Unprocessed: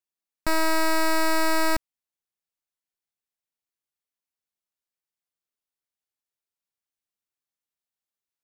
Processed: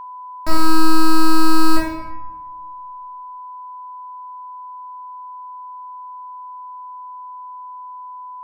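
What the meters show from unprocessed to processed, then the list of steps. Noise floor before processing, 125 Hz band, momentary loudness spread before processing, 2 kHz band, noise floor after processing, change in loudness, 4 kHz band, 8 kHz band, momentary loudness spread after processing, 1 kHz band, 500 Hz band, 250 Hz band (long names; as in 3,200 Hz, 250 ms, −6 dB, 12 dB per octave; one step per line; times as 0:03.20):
below −85 dBFS, +14.0 dB, 6 LU, −1.0 dB, −35 dBFS, −0.5 dB, +4.5 dB, +1.5 dB, 17 LU, +8.0 dB, +0.5 dB, +11.0 dB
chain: rectangular room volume 460 cubic metres, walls mixed, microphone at 2.6 metres
steady tone 1,000 Hz −28 dBFS
level −3.5 dB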